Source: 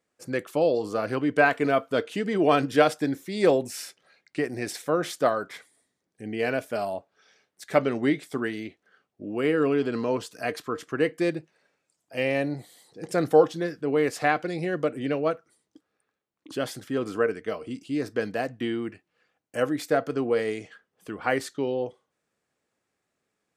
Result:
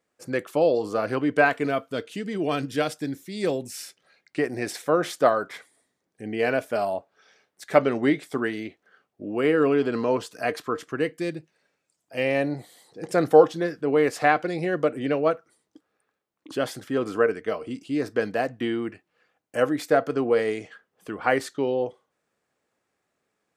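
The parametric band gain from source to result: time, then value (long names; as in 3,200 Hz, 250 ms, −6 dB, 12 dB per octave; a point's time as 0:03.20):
parametric band 840 Hz 2.9 octaves
0:01.31 +2.5 dB
0:02.03 −7.5 dB
0:03.69 −7.5 dB
0:04.42 +4 dB
0:10.74 +4 dB
0:11.23 −6.5 dB
0:12.49 +4 dB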